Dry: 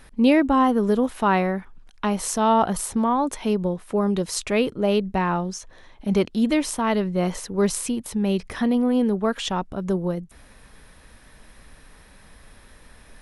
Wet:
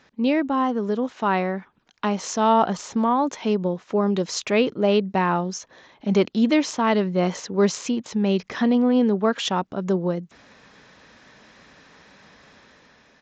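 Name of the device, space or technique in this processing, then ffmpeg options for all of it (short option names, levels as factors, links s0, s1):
Bluetooth headset: -af "highpass=160,dynaudnorm=f=960:g=3:m=2.24,aresample=16000,aresample=44100,volume=0.631" -ar 16000 -c:a sbc -b:a 64k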